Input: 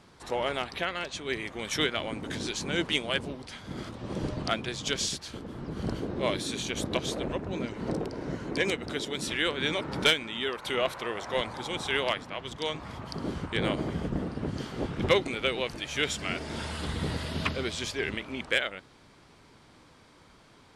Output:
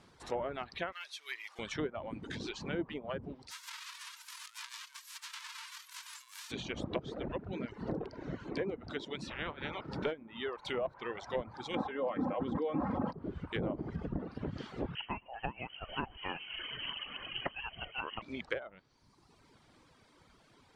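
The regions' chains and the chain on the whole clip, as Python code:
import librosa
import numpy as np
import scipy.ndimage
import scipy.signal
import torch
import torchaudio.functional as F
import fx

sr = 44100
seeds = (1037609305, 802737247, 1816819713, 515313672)

y = fx.chain(x, sr, fx.delta_mod(bps=64000, step_db=-38.5),
    fx.highpass(hz=1300.0, slope=12),
    fx.resample_bad(factor=3, down='filtered', up='hold'), at=(0.92, 1.59))
y = fx.envelope_flatten(y, sr, power=0.1, at=(3.5, 6.5), fade=0.02)
y = fx.over_compress(y, sr, threshold_db=-39.0, ratio=-1.0, at=(3.5, 6.5), fade=0.02)
y = fx.brickwall_highpass(y, sr, low_hz=880.0, at=(3.5, 6.5), fade=0.02)
y = fx.spec_clip(y, sr, under_db=16, at=(9.3, 9.84), fade=0.02)
y = fx.spacing_loss(y, sr, db_at_10k=25, at=(9.3, 9.84), fade=0.02)
y = fx.chain(y, sr, fx.highpass(hz=140.0, slope=12),
    fx.comb(ms=3.8, depth=0.59),
    fx.env_flatten(amount_pct=100), at=(11.74, 13.13))
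y = fx.chain(y, sr, fx.freq_invert(carrier_hz=3100),
    fx.echo_multitap(ms=(121, 894), db=(-19.0, -17.5)), at=(14.95, 18.22))
y = fx.dereverb_blind(y, sr, rt60_s=1.1)
y = fx.env_lowpass_down(y, sr, base_hz=770.0, full_db=-25.5)
y = y * librosa.db_to_amplitude(-4.5)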